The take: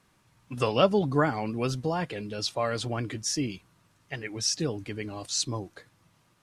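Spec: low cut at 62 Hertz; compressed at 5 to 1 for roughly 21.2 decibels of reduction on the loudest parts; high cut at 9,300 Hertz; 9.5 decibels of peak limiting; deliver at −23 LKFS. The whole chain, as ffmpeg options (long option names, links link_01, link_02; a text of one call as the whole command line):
ffmpeg -i in.wav -af "highpass=62,lowpass=9300,acompressor=threshold=-40dB:ratio=5,volume=22.5dB,alimiter=limit=-12.5dB:level=0:latency=1" out.wav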